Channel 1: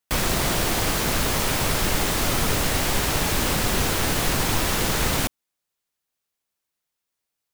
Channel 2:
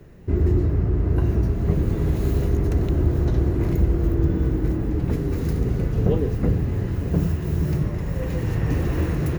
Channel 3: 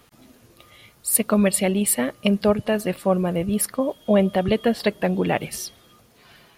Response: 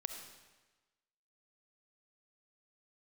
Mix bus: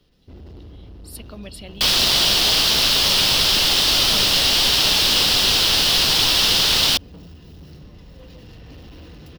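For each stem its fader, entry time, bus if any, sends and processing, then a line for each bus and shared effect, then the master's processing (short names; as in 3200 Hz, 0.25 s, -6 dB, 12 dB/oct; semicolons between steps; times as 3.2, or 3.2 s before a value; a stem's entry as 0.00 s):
+1.0 dB, 1.70 s, no send, low shelf 420 Hz -7 dB
-16.0 dB, 0.00 s, no send, comb 4 ms, depth 42%; hard clip -21.5 dBFS, distortion -9 dB
-20.0 dB, 0.00 s, no send, dry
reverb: off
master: band shelf 3900 Hz +14 dB 1.2 oct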